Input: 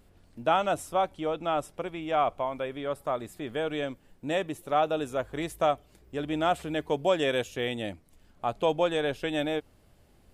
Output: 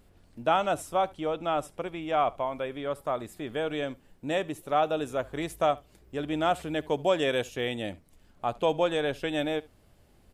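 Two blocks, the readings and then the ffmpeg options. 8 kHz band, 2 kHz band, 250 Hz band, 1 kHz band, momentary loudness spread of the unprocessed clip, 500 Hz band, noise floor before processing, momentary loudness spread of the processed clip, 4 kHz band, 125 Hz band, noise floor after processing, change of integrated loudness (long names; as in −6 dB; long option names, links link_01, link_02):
0.0 dB, 0.0 dB, 0.0 dB, 0.0 dB, 9 LU, 0.0 dB, −61 dBFS, 9 LU, 0.0 dB, 0.0 dB, −61 dBFS, 0.0 dB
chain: -af "aecho=1:1:72:0.0708"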